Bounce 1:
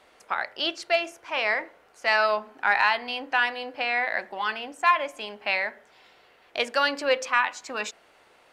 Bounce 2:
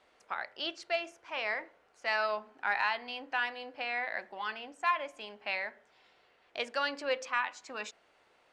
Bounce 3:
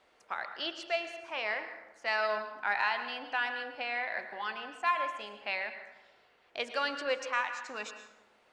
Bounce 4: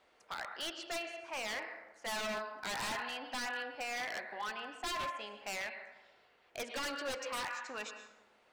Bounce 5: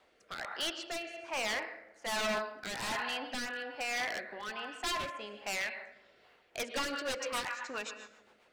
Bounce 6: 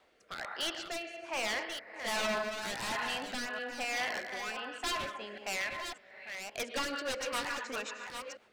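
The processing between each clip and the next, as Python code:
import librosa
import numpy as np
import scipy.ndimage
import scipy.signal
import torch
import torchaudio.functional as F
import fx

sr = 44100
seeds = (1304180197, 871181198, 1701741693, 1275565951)

y1 = scipy.signal.sosfilt(scipy.signal.butter(2, 8200.0, 'lowpass', fs=sr, output='sos'), x)
y1 = F.gain(torch.from_numpy(y1), -9.0).numpy()
y2 = fx.rev_plate(y1, sr, seeds[0], rt60_s=0.96, hf_ratio=0.6, predelay_ms=95, drr_db=8.5)
y3 = 10.0 ** (-30.5 / 20.0) * (np.abs((y2 / 10.0 ** (-30.5 / 20.0) + 3.0) % 4.0 - 2.0) - 1.0)
y3 = F.gain(torch.from_numpy(y3), -2.0).numpy()
y4 = fx.rotary_switch(y3, sr, hz=1.2, then_hz=7.5, switch_at_s=6.09)
y4 = F.gain(torch.from_numpy(y4), 5.5).numpy()
y5 = fx.reverse_delay(y4, sr, ms=598, wet_db=-7)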